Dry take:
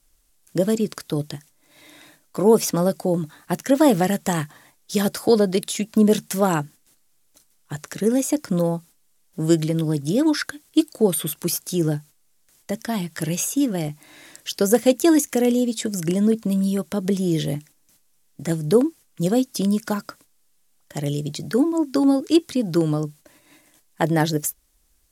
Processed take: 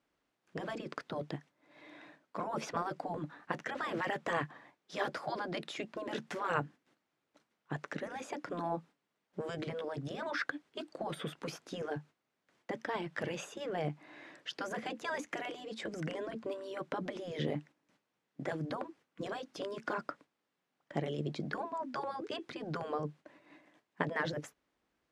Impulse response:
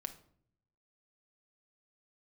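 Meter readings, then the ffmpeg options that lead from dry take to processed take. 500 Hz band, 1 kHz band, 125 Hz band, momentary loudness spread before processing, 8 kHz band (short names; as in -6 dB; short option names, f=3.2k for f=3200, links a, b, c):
-17.5 dB, -9.0 dB, -18.0 dB, 12 LU, -26.5 dB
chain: -af "alimiter=limit=-10dB:level=0:latency=1:release=61,highpass=190,lowpass=2.1k,afftfilt=real='re*lt(hypot(re,im),0.282)':imag='im*lt(hypot(re,im),0.282)':win_size=1024:overlap=0.75,volume=-3dB"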